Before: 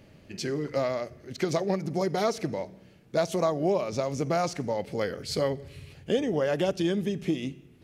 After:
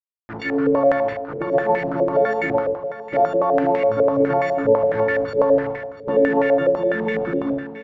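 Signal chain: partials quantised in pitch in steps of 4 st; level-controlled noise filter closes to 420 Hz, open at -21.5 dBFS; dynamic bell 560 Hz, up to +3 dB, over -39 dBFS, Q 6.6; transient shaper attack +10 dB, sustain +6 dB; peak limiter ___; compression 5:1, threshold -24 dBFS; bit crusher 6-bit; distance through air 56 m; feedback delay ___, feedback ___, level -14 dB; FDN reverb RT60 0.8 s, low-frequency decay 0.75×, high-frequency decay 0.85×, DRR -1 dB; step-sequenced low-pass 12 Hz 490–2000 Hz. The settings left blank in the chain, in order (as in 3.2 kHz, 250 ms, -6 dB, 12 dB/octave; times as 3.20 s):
-12 dBFS, 691 ms, 40%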